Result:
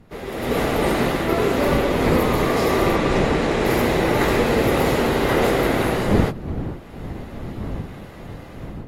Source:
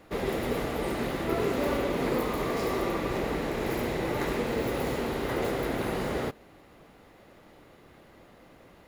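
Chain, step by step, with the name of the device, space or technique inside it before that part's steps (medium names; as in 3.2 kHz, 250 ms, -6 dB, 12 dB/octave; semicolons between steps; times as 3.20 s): 2.96–3.66 s: low-pass 9.5 kHz 24 dB/octave; smartphone video outdoors (wind noise 230 Hz -37 dBFS; level rider gain up to 16 dB; trim -4 dB; AAC 48 kbps 44.1 kHz)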